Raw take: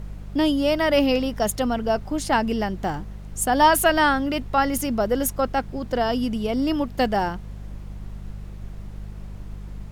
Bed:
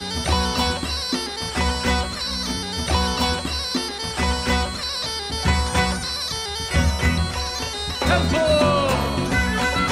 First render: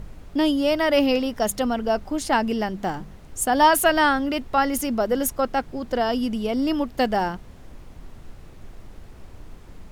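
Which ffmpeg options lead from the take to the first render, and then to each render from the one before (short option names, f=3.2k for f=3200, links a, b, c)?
-af "bandreject=f=50:t=h:w=4,bandreject=f=100:t=h:w=4,bandreject=f=150:t=h:w=4,bandreject=f=200:t=h:w=4"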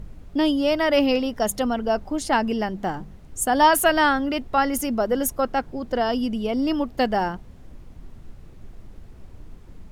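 -af "afftdn=nr=6:nf=-44"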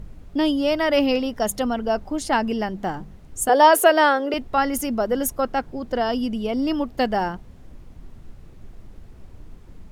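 -filter_complex "[0:a]asettb=1/sr,asplit=3[a][b][c];[a]atrim=end=3.494[d];[b]atrim=start=3.49:end=4.34,asetpts=PTS-STARTPTS,afade=t=in:d=0.004:c=qsin,afade=t=out:st=0.846:d=0.004:c=qsin,highpass=f=440:t=q:w=5.5[e];[c]atrim=start=4.336[f];[d][e]acrossfade=d=0.004:c1=hsin:c2=qsin[g];[g][f]acrossfade=d=0.004:c1=qsin:c2=hsin"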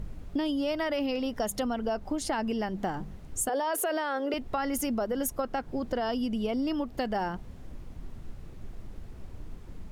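-af "alimiter=limit=-14.5dB:level=0:latency=1:release=20,acompressor=threshold=-27dB:ratio=6"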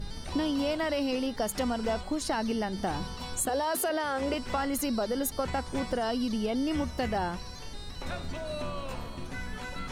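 -filter_complex "[1:a]volume=-19dB[a];[0:a][a]amix=inputs=2:normalize=0"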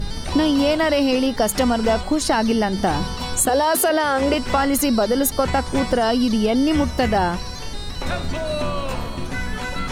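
-af "volume=11.5dB"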